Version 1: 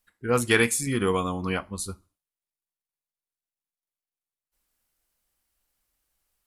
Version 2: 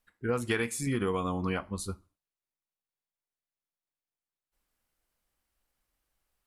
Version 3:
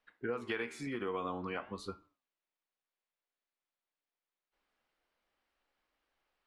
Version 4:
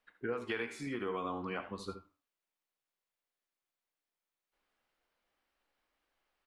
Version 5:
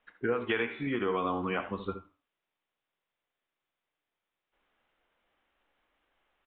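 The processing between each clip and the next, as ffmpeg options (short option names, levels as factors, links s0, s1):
-af "highshelf=f=3800:g=-8,acompressor=threshold=0.0501:ratio=6"
-filter_complex "[0:a]flanger=delay=6.5:depth=7.5:regen=87:speed=0.51:shape=sinusoidal,acompressor=threshold=0.01:ratio=6,acrossover=split=250 4400:gain=0.2 1 0.0708[s0][s1][s2];[s0][s1][s2]amix=inputs=3:normalize=0,volume=2.51"
-af "aecho=1:1:70|80:0.158|0.211"
-af "aresample=8000,aresample=44100,volume=2.24"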